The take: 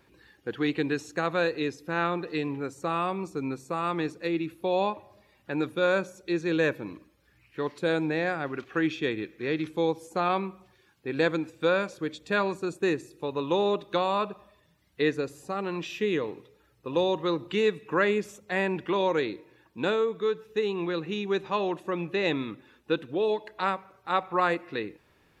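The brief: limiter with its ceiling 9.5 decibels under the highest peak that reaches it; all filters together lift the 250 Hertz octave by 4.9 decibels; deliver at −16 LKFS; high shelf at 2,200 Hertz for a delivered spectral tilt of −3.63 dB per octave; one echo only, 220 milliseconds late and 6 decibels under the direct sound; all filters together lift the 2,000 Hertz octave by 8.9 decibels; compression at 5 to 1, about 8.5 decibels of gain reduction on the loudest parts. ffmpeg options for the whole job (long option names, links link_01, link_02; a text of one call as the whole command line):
ffmpeg -i in.wav -af "equalizer=frequency=250:width_type=o:gain=7,equalizer=frequency=2000:width_type=o:gain=9,highshelf=frequency=2200:gain=4.5,acompressor=threshold=-24dB:ratio=5,alimiter=limit=-20.5dB:level=0:latency=1,aecho=1:1:220:0.501,volume=15dB" out.wav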